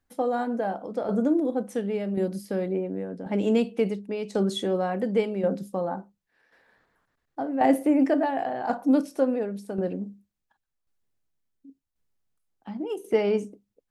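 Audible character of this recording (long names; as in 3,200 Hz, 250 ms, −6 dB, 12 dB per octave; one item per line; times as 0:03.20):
tremolo saw down 0.92 Hz, depth 60%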